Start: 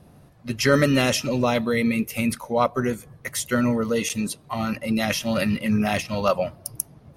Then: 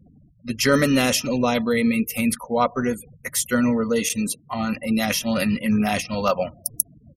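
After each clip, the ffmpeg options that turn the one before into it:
-af "afftfilt=real='re*gte(hypot(re,im),0.00794)':imag='im*gte(hypot(re,im),0.00794)':win_size=1024:overlap=0.75,highshelf=f=7.5k:g=8,aecho=1:1:4.1:0.31"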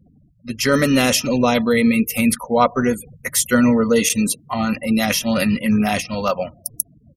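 -af "dynaudnorm=f=330:g=5:m=11.5dB,volume=-1dB"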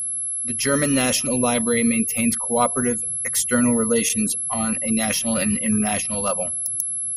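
-af "aeval=exprs='val(0)+0.112*sin(2*PI*11000*n/s)':c=same,volume=-4.5dB"

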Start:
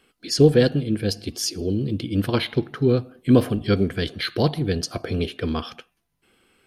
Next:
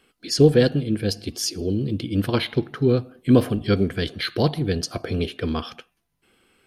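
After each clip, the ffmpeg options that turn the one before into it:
-af anull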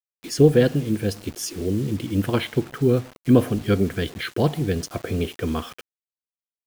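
-af "equalizer=f=4.5k:t=o:w=0.54:g=-11,acrusher=bits=6:mix=0:aa=0.000001"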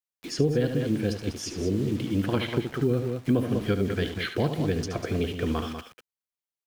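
-filter_complex "[0:a]aecho=1:1:72.89|195.3:0.316|0.316,acrossover=split=240|6500[a][b][c];[a]acompressor=threshold=-25dB:ratio=4[d];[b]acompressor=threshold=-23dB:ratio=4[e];[c]acompressor=threshold=-55dB:ratio=4[f];[d][e][f]amix=inputs=3:normalize=0,volume=-1.5dB"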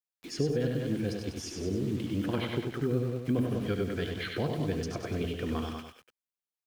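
-af "aecho=1:1:97:0.562,volume=-6dB"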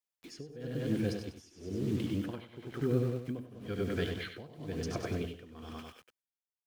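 -af "tremolo=f=1:d=0.91"

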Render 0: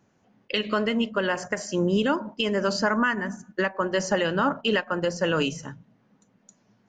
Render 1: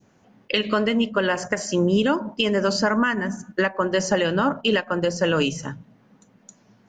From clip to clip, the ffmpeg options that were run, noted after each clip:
-filter_complex "[0:a]adynamicequalizer=threshold=0.0178:dfrequency=1300:dqfactor=0.78:tfrequency=1300:tqfactor=0.78:attack=5:release=100:ratio=0.375:range=2:mode=cutabove:tftype=bell,asplit=2[a][b];[b]acompressor=threshold=-32dB:ratio=6,volume=-2dB[c];[a][c]amix=inputs=2:normalize=0,volume=2dB"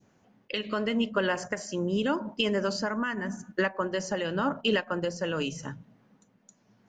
-af "tremolo=f=0.85:d=0.44,volume=-5dB"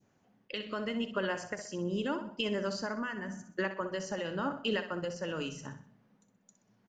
-af "aecho=1:1:63|126|189|252:0.299|0.122|0.0502|0.0206,volume=-6.5dB"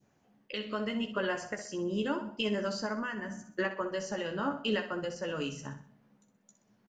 -filter_complex "[0:a]asplit=2[a][b];[b]adelay=14,volume=-6.5dB[c];[a][c]amix=inputs=2:normalize=0"

